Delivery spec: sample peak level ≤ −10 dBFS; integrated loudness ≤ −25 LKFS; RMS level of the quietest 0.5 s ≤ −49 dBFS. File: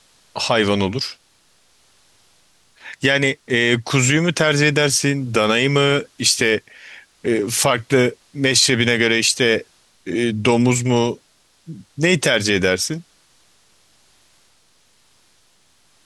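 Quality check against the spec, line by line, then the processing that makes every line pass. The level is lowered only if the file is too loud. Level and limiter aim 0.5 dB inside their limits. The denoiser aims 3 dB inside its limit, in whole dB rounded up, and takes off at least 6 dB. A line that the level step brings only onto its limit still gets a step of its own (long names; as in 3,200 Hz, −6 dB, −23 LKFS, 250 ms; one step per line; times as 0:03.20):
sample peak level −3.5 dBFS: out of spec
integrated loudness −17.5 LKFS: out of spec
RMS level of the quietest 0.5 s −57 dBFS: in spec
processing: level −8 dB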